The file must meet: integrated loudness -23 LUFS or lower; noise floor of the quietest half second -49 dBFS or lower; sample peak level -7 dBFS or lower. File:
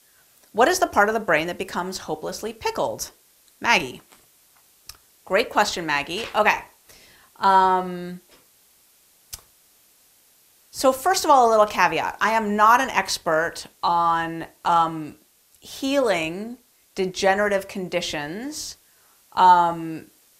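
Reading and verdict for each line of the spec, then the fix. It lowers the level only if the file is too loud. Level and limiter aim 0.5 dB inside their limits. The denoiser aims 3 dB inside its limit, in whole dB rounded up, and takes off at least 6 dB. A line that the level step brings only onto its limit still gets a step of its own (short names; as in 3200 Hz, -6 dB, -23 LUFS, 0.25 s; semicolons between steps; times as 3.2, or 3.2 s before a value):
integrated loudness -21.0 LUFS: fail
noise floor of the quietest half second -58 dBFS: OK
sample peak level -3.0 dBFS: fail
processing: gain -2.5 dB; limiter -7.5 dBFS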